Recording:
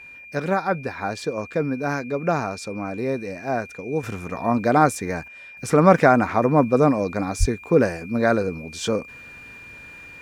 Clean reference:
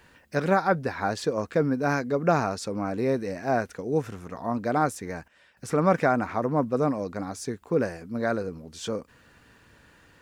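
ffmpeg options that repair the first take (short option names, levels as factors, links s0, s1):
-filter_complex "[0:a]bandreject=f=2400:w=30,asplit=3[s0][s1][s2];[s0]afade=t=out:st=7.39:d=0.02[s3];[s1]highpass=f=140:w=0.5412,highpass=f=140:w=1.3066,afade=t=in:st=7.39:d=0.02,afade=t=out:st=7.51:d=0.02[s4];[s2]afade=t=in:st=7.51:d=0.02[s5];[s3][s4][s5]amix=inputs=3:normalize=0,asetnsamples=n=441:p=0,asendcmd='4.03 volume volume -7.5dB',volume=1"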